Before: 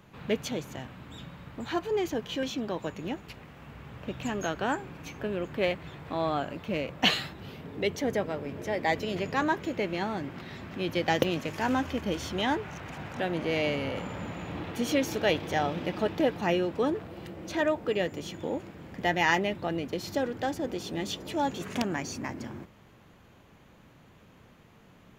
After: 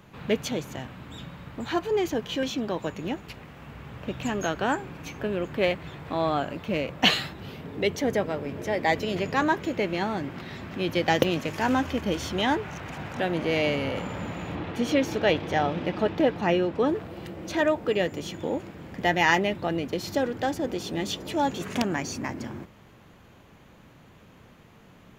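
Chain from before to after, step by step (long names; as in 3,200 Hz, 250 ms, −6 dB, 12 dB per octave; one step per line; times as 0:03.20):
0:14.55–0:16.90: high-shelf EQ 6,700 Hz −12 dB
level +3.5 dB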